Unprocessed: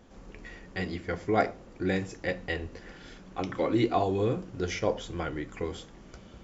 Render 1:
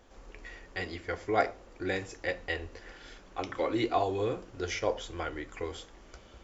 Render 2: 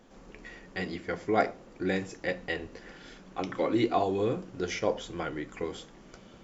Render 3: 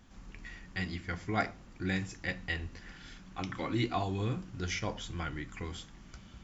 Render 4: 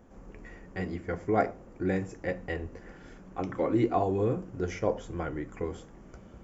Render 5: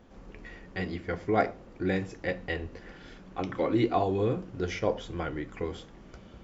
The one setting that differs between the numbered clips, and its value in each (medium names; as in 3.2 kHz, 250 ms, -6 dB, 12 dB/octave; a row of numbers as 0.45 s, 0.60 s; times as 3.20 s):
peaking EQ, frequency: 170 Hz, 64 Hz, 480 Hz, 3.9 kHz, 13 kHz